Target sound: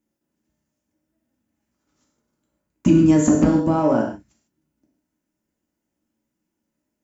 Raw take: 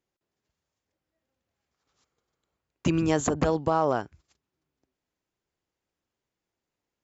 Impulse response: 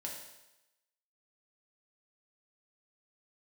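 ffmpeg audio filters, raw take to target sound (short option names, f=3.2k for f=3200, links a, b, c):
-filter_complex "[0:a]acontrast=72,equalizer=f=125:t=o:w=1:g=-5,equalizer=f=250:t=o:w=1:g=10,equalizer=f=500:t=o:w=1:g=-7,equalizer=f=1k:t=o:w=1:g=-5,equalizer=f=2k:t=o:w=1:g=-4,equalizer=f=4k:t=o:w=1:g=-10[a];[1:a]atrim=start_sample=2205,afade=t=out:st=0.21:d=0.01,atrim=end_sample=9702[b];[a][b]afir=irnorm=-1:irlink=0,volume=3dB"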